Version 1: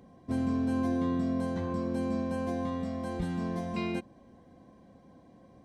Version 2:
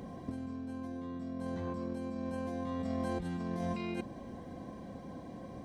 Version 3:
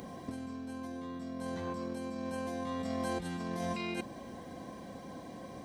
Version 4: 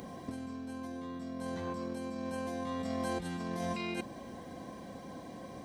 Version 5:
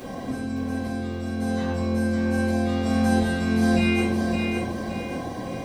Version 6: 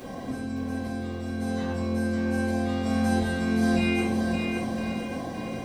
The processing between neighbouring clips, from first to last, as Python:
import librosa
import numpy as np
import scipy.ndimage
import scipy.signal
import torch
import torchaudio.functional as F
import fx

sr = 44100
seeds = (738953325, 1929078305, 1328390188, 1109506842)

y1 = fx.over_compress(x, sr, threshold_db=-40.0, ratio=-1.0)
y1 = y1 * librosa.db_to_amplitude(2.0)
y2 = fx.tilt_eq(y1, sr, slope=2.0)
y2 = y2 * librosa.db_to_amplitude(3.0)
y3 = y2
y4 = fx.echo_feedback(y3, sr, ms=564, feedback_pct=38, wet_db=-4.5)
y4 = fx.room_shoebox(y4, sr, seeds[0], volume_m3=83.0, walls='mixed', distance_m=2.3)
y4 = y4 * librosa.db_to_amplitude(2.5)
y5 = y4 + 10.0 ** (-11.5 / 20.0) * np.pad(y4, (int(1006 * sr / 1000.0), 0))[:len(y4)]
y5 = y5 * librosa.db_to_amplitude(-3.0)